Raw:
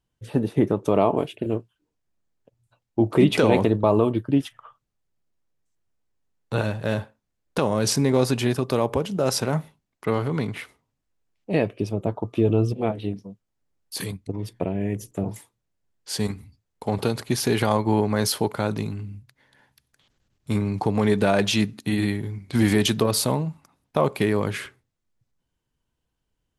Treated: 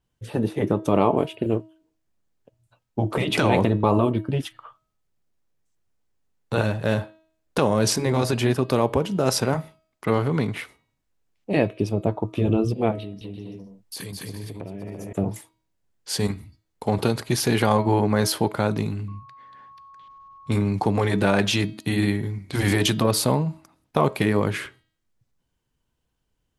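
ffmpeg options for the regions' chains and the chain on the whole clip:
ffmpeg -i in.wav -filter_complex "[0:a]asettb=1/sr,asplit=3[link_01][link_02][link_03];[link_01]atrim=end=13.004[link_04];[link_02]atrim=start=13:end=15.13,asetpts=PTS-STARTPTS,afade=type=in:duration=0.004:curve=qsin,afade=type=out:start_time=2.126:duration=0.004:curve=qsin,aecho=1:1:210|336|411.6|457|484.2:0.631|0.398|0.251|0.158|0.1,atrim=end_sample=93933,acompressor=threshold=-34dB:ratio=5:attack=3.2:release=140:knee=1:detection=peak[link_05];[link_03]atrim=start=15.126[link_06];[link_04][link_05]acrossfade=duration=0.004:curve1=hsin:curve2=qsin[link_07];[link_07][link_06]acrossfade=duration=0.004:curve1=qsin:curve2=hsin,asettb=1/sr,asplit=3[link_08][link_09][link_10];[link_08]atrim=end=19.084[link_11];[link_09]atrim=start=19.08:end=20.52,asetpts=PTS-STARTPTS,afade=type=in:duration=0.004:curve=qsin,afade=type=out:start_time=1.436:duration=0.004:curve=qsin,lowpass=4400,aeval=exprs='val(0)+0.00447*sin(2*PI*1100*n/s)':channel_layout=same[link_12];[link_10]atrim=start=20.516[link_13];[link_11][link_12]acrossfade=duration=0.004:curve1=hsin:curve2=qsin[link_14];[link_14][link_13]acrossfade=duration=0.004:curve1=qsin:curve2=hsin,bandreject=frequency=319.2:width_type=h:width=4,bandreject=frequency=638.4:width_type=h:width=4,bandreject=frequency=957.6:width_type=h:width=4,bandreject=frequency=1276.8:width_type=h:width=4,bandreject=frequency=1596:width_type=h:width=4,bandreject=frequency=1915.2:width_type=h:width=4,bandreject=frequency=2234.4:width_type=h:width=4,bandreject=frequency=2553.6:width_type=h:width=4,bandreject=frequency=2872.8:width_type=h:width=4,bandreject=frequency=3192:width_type=h:width=4,bandreject=frequency=3511.2:width_type=h:width=4,bandreject=frequency=3830.4:width_type=h:width=4,bandreject=frequency=4149.6:width_type=h:width=4,bandreject=frequency=4468.8:width_type=h:width=4,bandreject=frequency=4788:width_type=h:width=4,afftfilt=real='re*lt(hypot(re,im),0.794)':imag='im*lt(hypot(re,im),0.794)':win_size=1024:overlap=0.75,adynamicequalizer=threshold=0.0126:dfrequency=2900:dqfactor=0.7:tfrequency=2900:tqfactor=0.7:attack=5:release=100:ratio=0.375:range=2:mode=cutabove:tftype=highshelf,volume=2.5dB" out.wav

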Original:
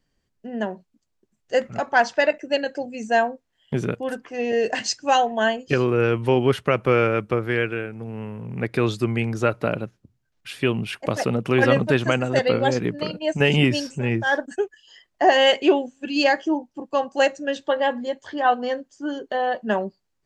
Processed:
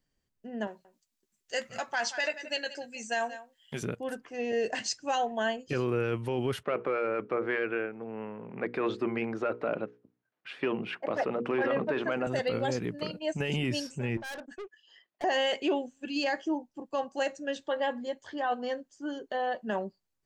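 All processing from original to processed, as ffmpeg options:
ffmpeg -i in.wav -filter_complex "[0:a]asettb=1/sr,asplit=3[link_01][link_02][link_03];[link_01]atrim=end=0.674[link_04];[link_02]atrim=start=0.67:end=3.83,asetpts=PTS-STARTPTS,afade=type=in:duration=0.004:curve=qsin,afade=type=out:start_time=3.156:duration=0.004:curve=qsin,tiltshelf=frequency=1100:gain=-8,asplit=2[link_05][link_06];[link_06]adelay=13,volume=-10.5dB[link_07];[link_05][link_07]amix=inputs=2:normalize=0,atrim=end_sample=139356,aecho=1:1:177:0.133,atrim=end_sample=139356[link_08];[link_03]atrim=start=3.826[link_09];[link_04][link_08]acrossfade=duration=0.004:curve1=hsin:curve2=qsin[link_10];[link_10][link_09]acrossfade=duration=0.004:curve1=qsin:curve2=hsin,asettb=1/sr,asplit=3[link_11][link_12][link_13];[link_11]atrim=end=6.634[link_14];[link_12]atrim=start=6.63:end=12.27,asetpts=PTS-STARTPTS,afade=type=in:duration=0.004:curve=qsin,afade=type=out:start_time=5.636:duration=0.004:curve=qsin,acontrast=78,highpass=300,lowpass=2000,bandreject=frequency=60:width_type=h:width=6,bandreject=frequency=120:width_type=h:width=6,bandreject=frequency=180:width_type=h:width=6,bandreject=frequency=240:width_type=h:width=6,bandreject=frequency=300:width_type=h:width=6,bandreject=frequency=360:width_type=h:width=6,bandreject=frequency=420:width_type=h:width=6,bandreject=frequency=480:width_type=h:width=6[link_15];[link_13]atrim=start=12.266[link_16];[link_14][link_15]acrossfade=duration=0.004:curve1=hsin:curve2=qsin[link_17];[link_17][link_16]acrossfade=duration=0.004:curve1=qsin:curve2=hsin,asettb=1/sr,asplit=3[link_18][link_19][link_20];[link_18]atrim=end=14.174[link_21];[link_19]atrim=start=14.17:end=15.24,asetpts=PTS-STARTPTS,afade=type=in:duration=0.004:curve=qsin,afade=type=out:start_time=1.066:duration=0.004:curve=qsin,highpass=210,lowpass=3800,aeval=exprs='(tanh(31.6*val(0)+0.15)-tanh(0.15))/31.6':channel_layout=same[link_22];[link_20]atrim=start=15.236[link_23];[link_21][link_22]acrossfade=duration=0.004:curve1=hsin:curve2=qsin[link_24];[link_24][link_23]acrossfade=duration=0.004:curve1=qsin:curve2=hsin,highshelf=frequency=8500:gain=7,alimiter=limit=-12.5dB:level=0:latency=1:release=16,volume=-8dB" out.wav

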